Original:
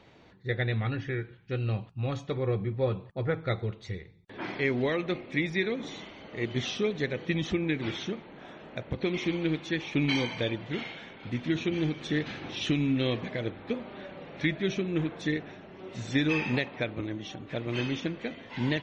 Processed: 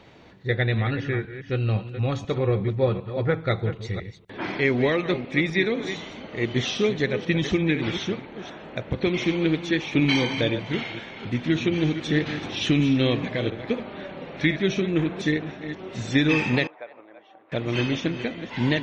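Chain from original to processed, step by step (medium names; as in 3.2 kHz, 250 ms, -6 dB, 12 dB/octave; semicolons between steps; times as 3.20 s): chunks repeated in reverse 250 ms, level -10.5 dB; 16.67–17.52 s: ladder band-pass 900 Hz, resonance 30%; trim +6 dB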